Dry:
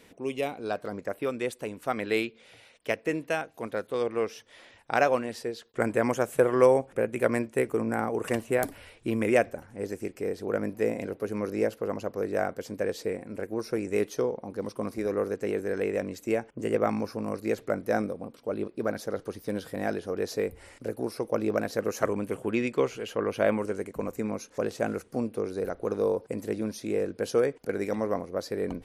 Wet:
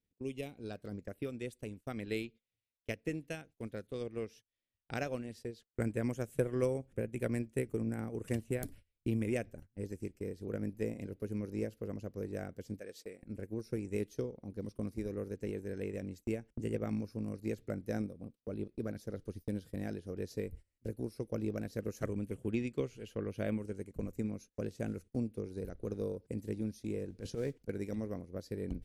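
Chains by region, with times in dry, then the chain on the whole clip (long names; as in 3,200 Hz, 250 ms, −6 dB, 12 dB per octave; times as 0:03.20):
0:12.79–0:13.23: high-pass filter 280 Hz 6 dB per octave + low-shelf EQ 370 Hz −9.5 dB
0:27.10–0:27.63: transient designer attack −9 dB, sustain +5 dB + noise that follows the level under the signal 24 dB + high-frequency loss of the air 50 metres
whole clip: noise gate −42 dBFS, range −25 dB; guitar amp tone stack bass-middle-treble 10-0-1; transient designer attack +4 dB, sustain −5 dB; level +11 dB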